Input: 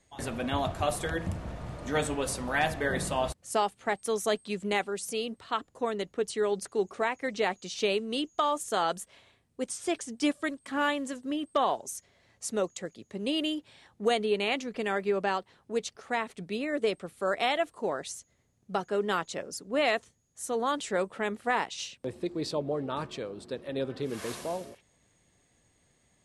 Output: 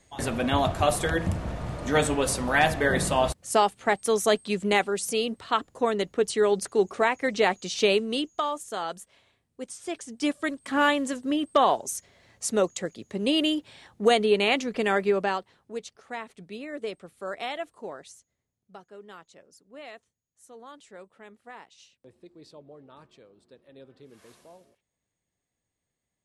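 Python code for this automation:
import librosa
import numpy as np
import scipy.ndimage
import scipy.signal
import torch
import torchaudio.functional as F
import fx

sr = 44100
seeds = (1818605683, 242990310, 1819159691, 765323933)

y = fx.gain(x, sr, db=fx.line((7.98, 6.0), (8.66, -4.0), (9.84, -4.0), (10.73, 6.0), (15.01, 6.0), (15.85, -5.5), (17.75, -5.5), (18.9, -17.0)))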